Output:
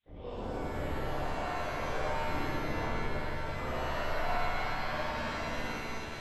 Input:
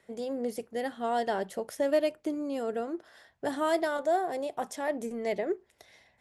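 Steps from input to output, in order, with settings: one diode to ground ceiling -31.5 dBFS; treble ducked by the level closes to 1200 Hz, closed at -29.5 dBFS; bell 410 Hz -13 dB 0.53 oct; compressor 4:1, threshold -41 dBFS, peak gain reduction 12.5 dB; grains 0.24 s, grains 7.5/s, spray 44 ms, pitch spread up and down by 0 st; added noise violet -63 dBFS; chorus voices 2, 0.35 Hz, delay 15 ms, depth 1.8 ms; LPC vocoder at 8 kHz whisper; flutter echo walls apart 9.6 m, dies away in 1.2 s; shimmer reverb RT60 2.9 s, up +7 st, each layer -2 dB, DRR -7.5 dB

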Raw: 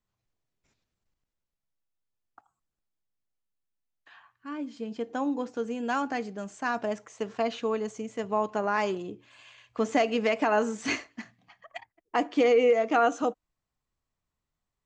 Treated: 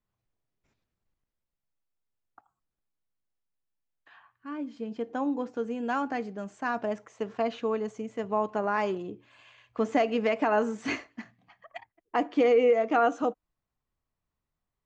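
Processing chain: high shelf 4000 Hz -11.5 dB

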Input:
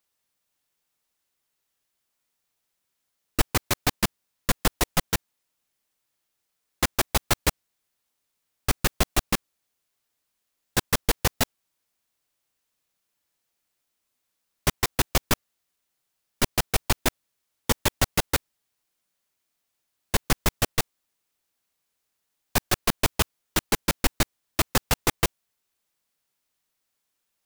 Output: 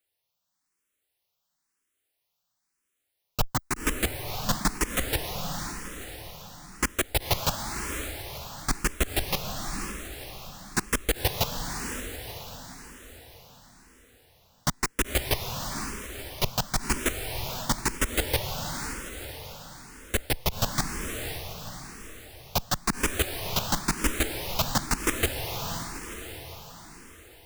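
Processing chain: 3.4–3.86 bell 4800 Hz -6 dB 1.2 oct; diffused feedback echo 0.509 s, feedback 52%, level -5 dB; endless phaser +0.99 Hz

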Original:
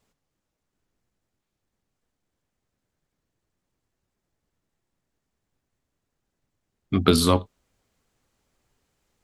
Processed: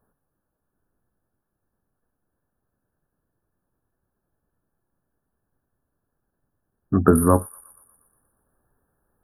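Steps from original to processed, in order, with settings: brick-wall FIR band-stop 1800–9300 Hz; on a send: thin delay 0.119 s, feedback 58%, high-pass 3600 Hz, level -7.5 dB; on the sum: gain +3 dB

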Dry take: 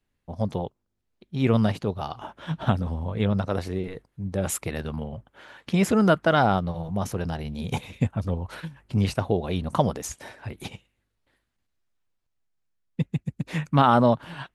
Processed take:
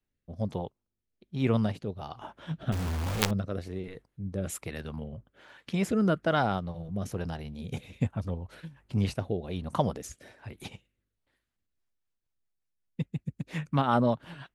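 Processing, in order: rotary speaker horn 1.2 Hz, later 5.5 Hz, at 11.34; 2.72–3.31 companded quantiser 2-bit; gain -4.5 dB

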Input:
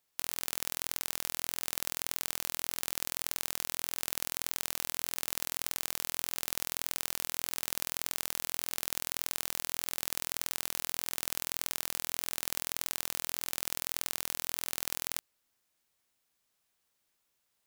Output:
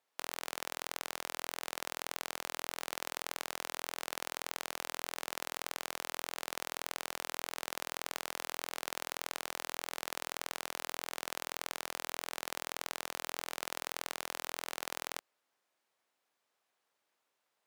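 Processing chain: HPF 600 Hz 12 dB/oct; tilt -4 dB/oct; gain +4.5 dB

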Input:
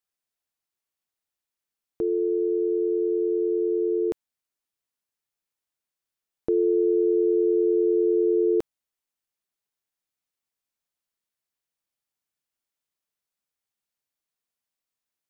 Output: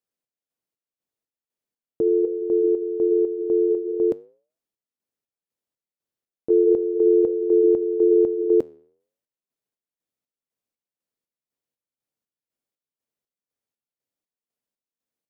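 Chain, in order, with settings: graphic EQ 125/250/500 Hz +7/+8/+9 dB; chopper 2 Hz, depth 60%, duty 50%; flange 0.4 Hz, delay 3.4 ms, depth 9.8 ms, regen -87%

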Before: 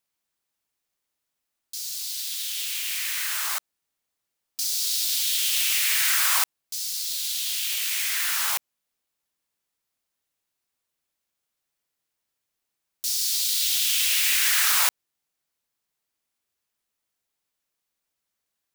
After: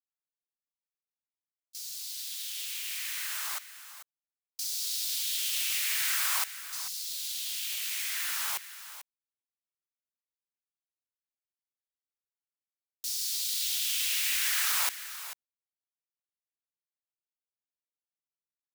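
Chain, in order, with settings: gate with hold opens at -23 dBFS; on a send: echo 0.442 s -13 dB; on the sum: gain -7.5 dB

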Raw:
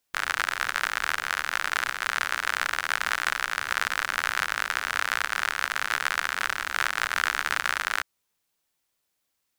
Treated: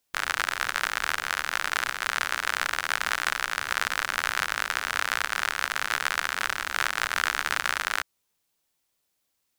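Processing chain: bell 1600 Hz -2.5 dB 1.4 oct; gain +1.5 dB

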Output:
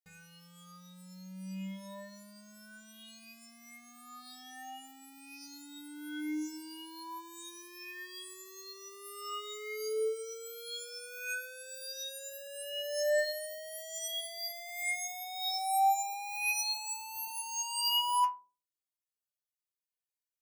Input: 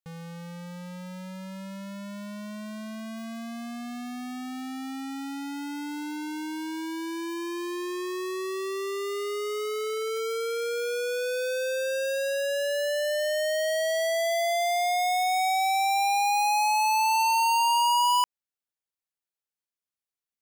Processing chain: high shelf 2900 Hz +8.5 dB; metallic resonator 90 Hz, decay 0.73 s, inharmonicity 0.03; gain +1.5 dB

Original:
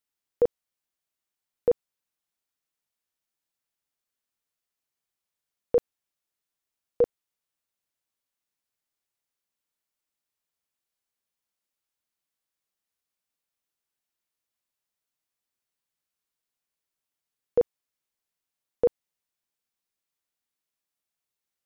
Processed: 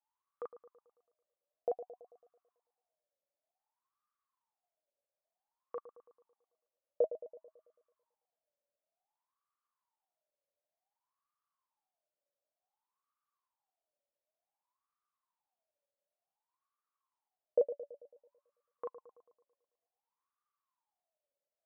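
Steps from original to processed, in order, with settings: limiter -22.5 dBFS, peak gain reduction 8.5 dB; wah 0.55 Hz 560–1200 Hz, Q 17; on a send: dark delay 0.11 s, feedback 53%, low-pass 1100 Hz, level -12.5 dB; on the sum: gain +17.5 dB

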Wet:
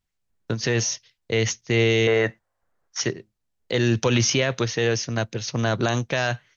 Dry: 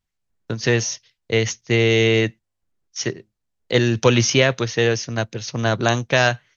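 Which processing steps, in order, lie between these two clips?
2.07–3.01 band shelf 940 Hz +13 dB 2.3 oct; limiter -11 dBFS, peak gain reduction 9.5 dB

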